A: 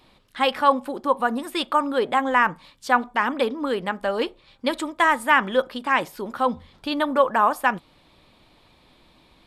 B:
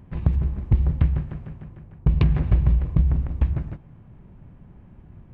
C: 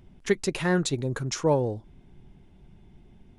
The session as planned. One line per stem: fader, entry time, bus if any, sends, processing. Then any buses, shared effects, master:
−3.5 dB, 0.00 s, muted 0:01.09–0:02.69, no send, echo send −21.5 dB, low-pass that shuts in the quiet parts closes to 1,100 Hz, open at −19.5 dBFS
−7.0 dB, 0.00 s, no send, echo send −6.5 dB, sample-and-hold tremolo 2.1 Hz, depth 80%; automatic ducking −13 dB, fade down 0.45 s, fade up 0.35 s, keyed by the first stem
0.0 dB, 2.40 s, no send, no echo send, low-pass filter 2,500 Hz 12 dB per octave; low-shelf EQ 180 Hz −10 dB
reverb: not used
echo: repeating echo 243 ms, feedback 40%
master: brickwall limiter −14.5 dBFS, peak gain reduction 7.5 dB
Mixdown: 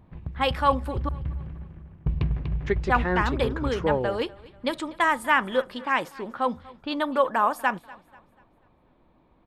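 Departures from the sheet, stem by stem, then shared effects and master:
stem B: missing sample-and-hold tremolo 2.1 Hz, depth 80%
master: missing brickwall limiter −14.5 dBFS, peak gain reduction 7.5 dB

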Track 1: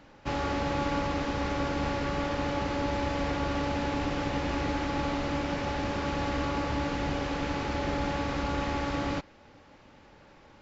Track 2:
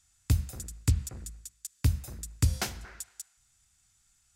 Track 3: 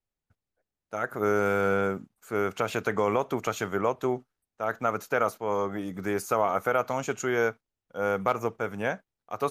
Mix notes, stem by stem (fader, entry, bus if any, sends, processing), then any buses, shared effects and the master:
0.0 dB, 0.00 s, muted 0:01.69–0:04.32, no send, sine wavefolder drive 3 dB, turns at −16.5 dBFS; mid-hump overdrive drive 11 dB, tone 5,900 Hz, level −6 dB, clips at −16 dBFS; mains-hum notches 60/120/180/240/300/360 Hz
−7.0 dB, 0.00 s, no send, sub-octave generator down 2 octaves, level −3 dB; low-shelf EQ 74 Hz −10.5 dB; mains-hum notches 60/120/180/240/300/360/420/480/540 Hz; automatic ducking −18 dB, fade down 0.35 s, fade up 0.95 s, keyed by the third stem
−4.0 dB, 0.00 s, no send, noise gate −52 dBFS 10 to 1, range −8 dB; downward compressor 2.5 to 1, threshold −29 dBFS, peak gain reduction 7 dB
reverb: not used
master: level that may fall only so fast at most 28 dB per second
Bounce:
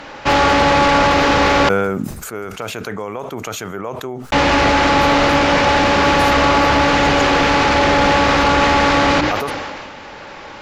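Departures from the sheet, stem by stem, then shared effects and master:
stem 1 0.0 dB → +10.5 dB
stem 3 −4.0 dB → +3.5 dB

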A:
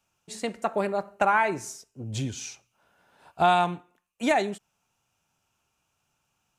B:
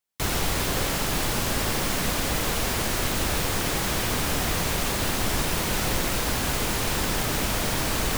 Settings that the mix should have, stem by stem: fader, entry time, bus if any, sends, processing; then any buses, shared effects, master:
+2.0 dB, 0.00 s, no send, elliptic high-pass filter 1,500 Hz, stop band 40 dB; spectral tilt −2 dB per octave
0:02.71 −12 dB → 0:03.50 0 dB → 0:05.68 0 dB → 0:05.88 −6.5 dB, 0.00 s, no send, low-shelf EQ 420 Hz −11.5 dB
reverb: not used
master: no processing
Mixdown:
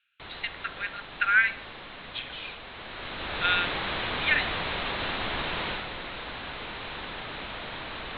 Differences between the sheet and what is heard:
stem A +2.0 dB → +9.0 dB
master: extra Butterworth low-pass 4,000 Hz 96 dB per octave

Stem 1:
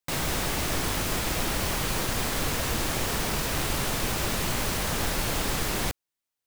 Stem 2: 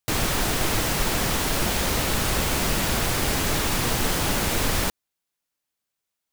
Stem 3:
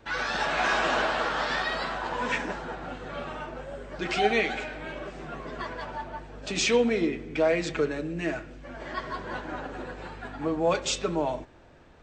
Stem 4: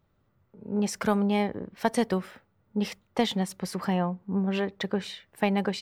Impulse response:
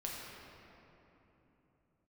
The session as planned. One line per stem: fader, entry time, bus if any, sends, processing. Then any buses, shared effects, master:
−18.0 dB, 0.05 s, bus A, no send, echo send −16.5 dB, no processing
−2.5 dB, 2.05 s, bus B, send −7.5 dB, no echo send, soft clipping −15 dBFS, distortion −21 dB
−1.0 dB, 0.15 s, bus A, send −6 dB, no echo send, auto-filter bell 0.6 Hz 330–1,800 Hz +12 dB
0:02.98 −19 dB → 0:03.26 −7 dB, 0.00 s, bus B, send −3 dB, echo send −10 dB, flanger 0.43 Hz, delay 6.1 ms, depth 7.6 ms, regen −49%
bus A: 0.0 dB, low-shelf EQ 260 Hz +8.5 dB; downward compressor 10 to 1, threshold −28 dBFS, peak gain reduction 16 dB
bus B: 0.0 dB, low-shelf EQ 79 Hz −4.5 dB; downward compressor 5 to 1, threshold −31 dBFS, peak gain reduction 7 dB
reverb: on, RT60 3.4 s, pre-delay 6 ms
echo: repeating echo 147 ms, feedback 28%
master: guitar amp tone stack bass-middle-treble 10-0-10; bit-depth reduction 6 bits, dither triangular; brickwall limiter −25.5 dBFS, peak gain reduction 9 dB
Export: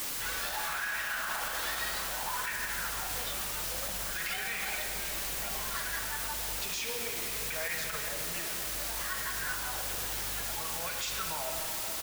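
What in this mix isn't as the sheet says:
stem 1 −18.0 dB → −25.0 dB
stem 2: muted

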